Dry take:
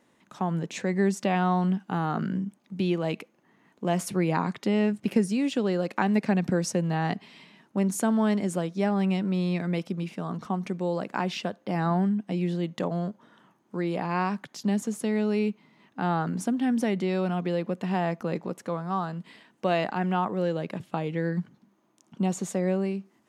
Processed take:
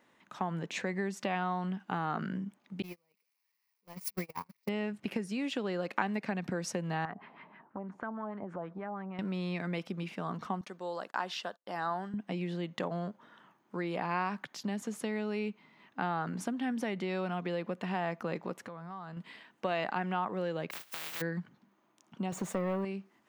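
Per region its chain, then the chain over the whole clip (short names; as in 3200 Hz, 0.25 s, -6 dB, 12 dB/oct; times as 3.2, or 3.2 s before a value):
2.82–4.69 switching spikes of -21 dBFS + ripple EQ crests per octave 0.86, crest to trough 10 dB + gate -21 dBFS, range -47 dB
7.05–9.19 compressor 10:1, threshold -33 dBFS + LFO low-pass sine 6.3 Hz 770–1600 Hz
10.61–12.14 HPF 890 Hz 6 dB/oct + gate -52 dBFS, range -27 dB + bell 2300 Hz -11 dB 0.5 oct
18.62–19.17 low shelf 120 Hz +10.5 dB + compressor 10:1, threshold -36 dBFS
20.7–21.2 spectral contrast lowered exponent 0.12 + compressor 2:1, threshold -44 dBFS
22.32–22.85 sample leveller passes 2 + bell 4500 Hz -8.5 dB 2.2 oct
whole clip: bell 9100 Hz -13 dB 2.4 oct; compressor 4:1, threshold -27 dBFS; tilt shelf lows -6.5 dB, about 840 Hz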